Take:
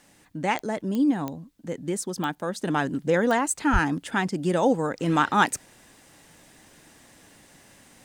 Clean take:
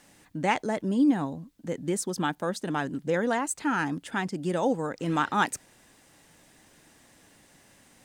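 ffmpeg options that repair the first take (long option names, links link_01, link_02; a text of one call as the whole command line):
ffmpeg -i in.wav -filter_complex "[0:a]adeclick=threshold=4,asplit=3[link_01][link_02][link_03];[link_01]afade=type=out:start_time=3.72:duration=0.02[link_04];[link_02]highpass=frequency=140:width=0.5412,highpass=frequency=140:width=1.3066,afade=type=in:start_time=3.72:duration=0.02,afade=type=out:start_time=3.84:duration=0.02[link_05];[link_03]afade=type=in:start_time=3.84:duration=0.02[link_06];[link_04][link_05][link_06]amix=inputs=3:normalize=0,asetnsamples=nb_out_samples=441:pad=0,asendcmd='2.58 volume volume -4.5dB',volume=0dB" out.wav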